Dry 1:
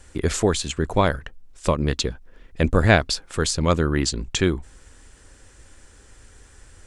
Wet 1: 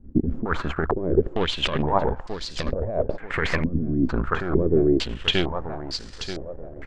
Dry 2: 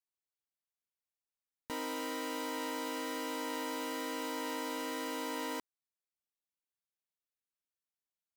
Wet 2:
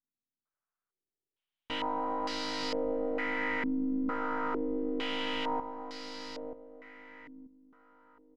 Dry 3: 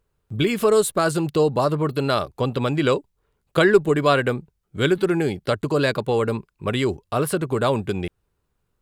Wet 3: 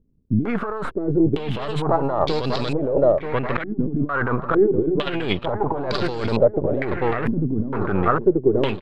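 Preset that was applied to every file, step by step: partial rectifier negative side -12 dB; feedback delay 933 ms, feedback 31%, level -8 dB; compressor with a negative ratio -28 dBFS, ratio -1; step-sequenced low-pass 2.2 Hz 250–4700 Hz; trim +4.5 dB

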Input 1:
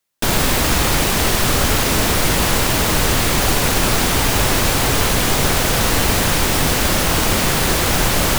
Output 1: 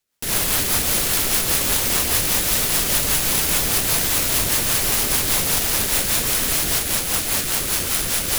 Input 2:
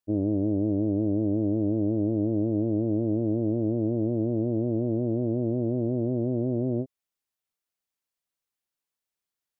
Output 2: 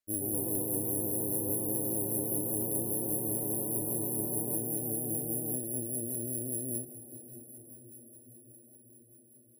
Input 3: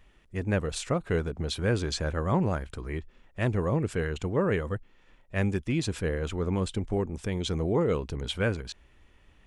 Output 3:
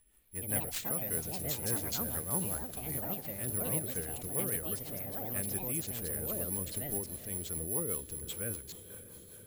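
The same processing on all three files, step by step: treble shelf 6.8 kHz +11.5 dB; careless resampling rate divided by 4×, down none, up zero stuff; on a send: echo that smears into a reverb 537 ms, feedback 71%, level -15 dB; on the sum: rotary cabinet horn 5 Hz; ever faster or slower copies 138 ms, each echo +4 st, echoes 2; trim -12.5 dB

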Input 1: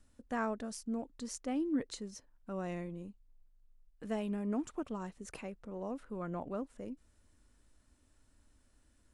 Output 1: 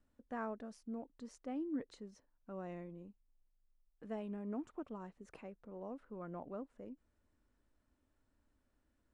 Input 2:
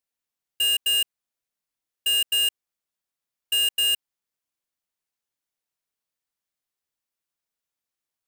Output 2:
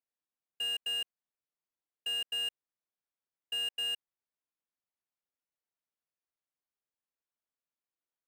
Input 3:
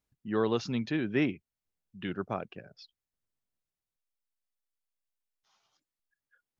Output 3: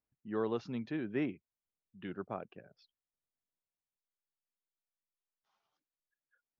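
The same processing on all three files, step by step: low-pass 1.4 kHz 6 dB/octave; bass shelf 150 Hz -7.5 dB; trim -4.5 dB

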